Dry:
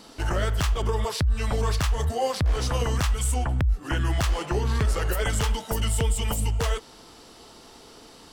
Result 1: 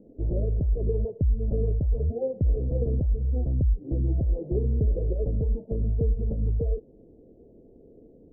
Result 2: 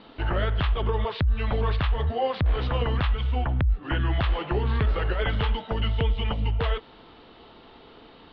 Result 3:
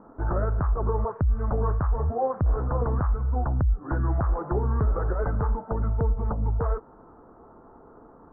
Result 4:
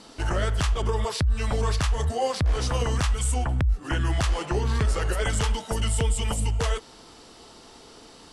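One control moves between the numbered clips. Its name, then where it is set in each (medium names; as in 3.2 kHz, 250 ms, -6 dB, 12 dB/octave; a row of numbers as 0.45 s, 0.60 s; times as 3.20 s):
steep low-pass, frequency: 560 Hz, 3.8 kHz, 1.4 kHz, 11 kHz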